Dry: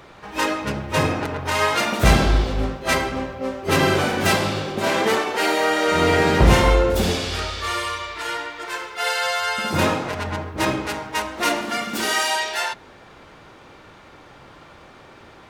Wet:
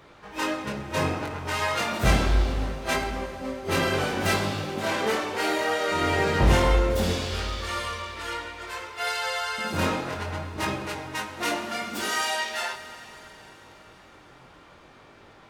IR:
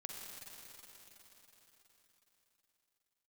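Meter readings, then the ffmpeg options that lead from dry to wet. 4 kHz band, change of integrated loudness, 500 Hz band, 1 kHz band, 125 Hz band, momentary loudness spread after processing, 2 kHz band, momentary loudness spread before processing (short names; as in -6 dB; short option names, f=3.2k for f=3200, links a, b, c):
-6.0 dB, -5.5 dB, -6.0 dB, -6.0 dB, -5.0 dB, 11 LU, -5.5 dB, 11 LU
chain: -filter_complex "[0:a]flanger=delay=20:depth=3.4:speed=0.66,asplit=2[a][b];[1:a]atrim=start_sample=2205[c];[b][c]afir=irnorm=-1:irlink=0,volume=-4.5dB[d];[a][d]amix=inputs=2:normalize=0,volume=-5.5dB"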